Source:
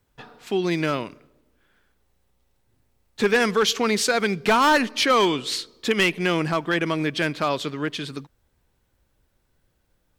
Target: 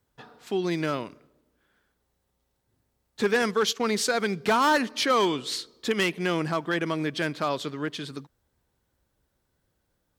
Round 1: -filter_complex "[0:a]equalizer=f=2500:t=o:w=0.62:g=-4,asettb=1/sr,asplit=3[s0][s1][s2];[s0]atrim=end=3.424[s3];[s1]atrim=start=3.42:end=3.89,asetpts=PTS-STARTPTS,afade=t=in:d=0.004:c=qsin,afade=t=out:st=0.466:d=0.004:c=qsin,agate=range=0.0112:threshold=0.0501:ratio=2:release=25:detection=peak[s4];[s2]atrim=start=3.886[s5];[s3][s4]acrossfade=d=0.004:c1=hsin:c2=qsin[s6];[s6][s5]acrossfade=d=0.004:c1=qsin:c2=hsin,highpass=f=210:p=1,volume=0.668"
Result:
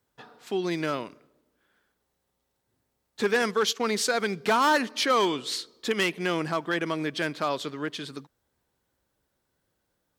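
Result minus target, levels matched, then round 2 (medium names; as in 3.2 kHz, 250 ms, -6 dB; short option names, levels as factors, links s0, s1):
125 Hz band -3.0 dB
-filter_complex "[0:a]equalizer=f=2500:t=o:w=0.62:g=-4,asettb=1/sr,asplit=3[s0][s1][s2];[s0]atrim=end=3.424[s3];[s1]atrim=start=3.42:end=3.89,asetpts=PTS-STARTPTS,afade=t=in:d=0.004:c=qsin,afade=t=out:st=0.466:d=0.004:c=qsin,agate=range=0.0112:threshold=0.0501:ratio=2:release=25:detection=peak[s4];[s2]atrim=start=3.886[s5];[s3][s4]acrossfade=d=0.004:c1=hsin:c2=qsin[s6];[s6][s5]acrossfade=d=0.004:c1=qsin:c2=hsin,highpass=f=63:p=1,volume=0.668"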